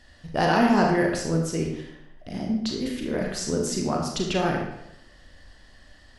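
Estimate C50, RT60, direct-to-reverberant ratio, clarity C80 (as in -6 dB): 3.5 dB, 0.85 s, 0.0 dB, 6.0 dB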